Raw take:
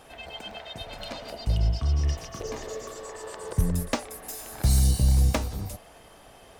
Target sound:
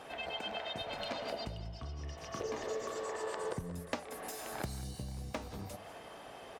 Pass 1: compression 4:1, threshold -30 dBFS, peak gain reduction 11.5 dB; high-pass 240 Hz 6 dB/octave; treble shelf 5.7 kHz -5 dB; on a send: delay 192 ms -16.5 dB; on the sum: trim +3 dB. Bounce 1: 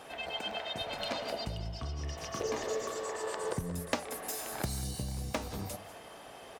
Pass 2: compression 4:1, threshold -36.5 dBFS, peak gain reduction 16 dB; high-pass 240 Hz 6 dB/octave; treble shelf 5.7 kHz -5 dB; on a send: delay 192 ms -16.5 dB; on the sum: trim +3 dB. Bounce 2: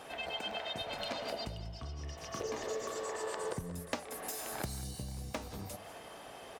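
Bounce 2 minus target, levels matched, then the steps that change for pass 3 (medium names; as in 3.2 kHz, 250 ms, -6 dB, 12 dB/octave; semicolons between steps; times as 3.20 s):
8 kHz band +3.5 dB
change: treble shelf 5.7 kHz -12 dB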